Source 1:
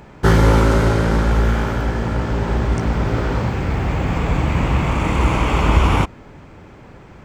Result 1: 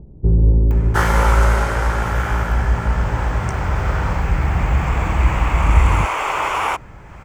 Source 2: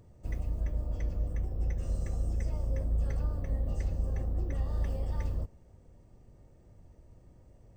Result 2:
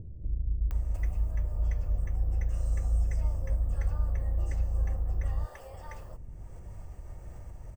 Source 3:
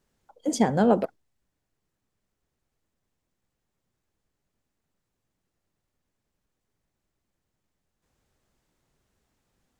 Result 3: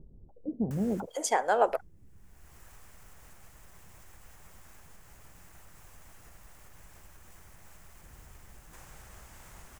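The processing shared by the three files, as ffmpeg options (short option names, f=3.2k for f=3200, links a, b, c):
-filter_complex "[0:a]equalizer=f=125:t=o:w=1:g=-5,equalizer=f=250:t=o:w=1:g=-10,equalizer=f=500:t=o:w=1:g=-4,equalizer=f=4k:t=o:w=1:g=-9,acompressor=mode=upward:threshold=-34dB:ratio=2.5,acrossover=split=380[a][b];[b]adelay=710[c];[a][c]amix=inputs=2:normalize=0,volume=4dB"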